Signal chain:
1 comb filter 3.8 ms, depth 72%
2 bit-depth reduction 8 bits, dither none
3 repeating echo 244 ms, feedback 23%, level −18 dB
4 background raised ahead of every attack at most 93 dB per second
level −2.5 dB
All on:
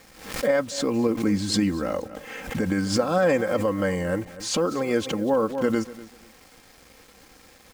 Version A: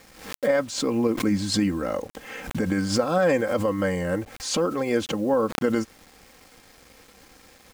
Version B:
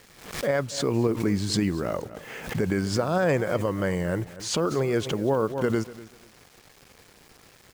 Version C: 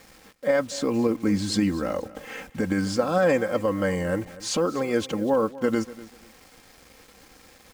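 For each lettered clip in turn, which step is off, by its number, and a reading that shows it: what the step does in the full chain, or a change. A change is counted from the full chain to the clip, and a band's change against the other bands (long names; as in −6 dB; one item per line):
3, change in momentary loudness spread −2 LU
1, 125 Hz band +5.0 dB
4, 4 kHz band −2.0 dB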